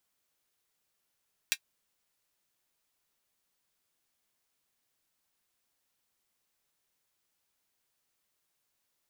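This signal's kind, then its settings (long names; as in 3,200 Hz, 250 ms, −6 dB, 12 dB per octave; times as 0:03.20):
closed synth hi-hat, high-pass 2,200 Hz, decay 0.07 s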